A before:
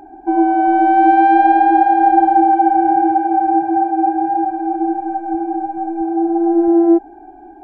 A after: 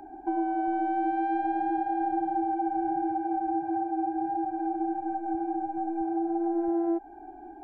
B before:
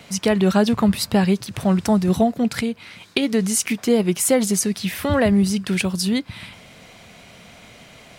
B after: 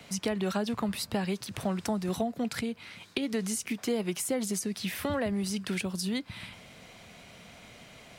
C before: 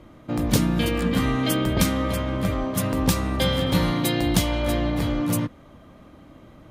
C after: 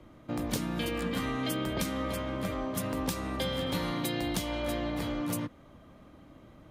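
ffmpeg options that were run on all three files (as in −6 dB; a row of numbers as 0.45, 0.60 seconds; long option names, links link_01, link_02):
-filter_complex "[0:a]acrossover=split=210|520[link_01][link_02][link_03];[link_01]acompressor=threshold=-33dB:ratio=4[link_04];[link_02]acompressor=threshold=-28dB:ratio=4[link_05];[link_03]acompressor=threshold=-27dB:ratio=4[link_06];[link_04][link_05][link_06]amix=inputs=3:normalize=0,volume=-6dB"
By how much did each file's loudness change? −15.0, −12.5, −9.5 LU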